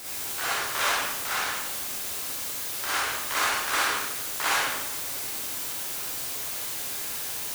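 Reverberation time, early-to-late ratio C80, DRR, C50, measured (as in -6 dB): 0.95 s, 0.5 dB, -7.5 dB, -3.5 dB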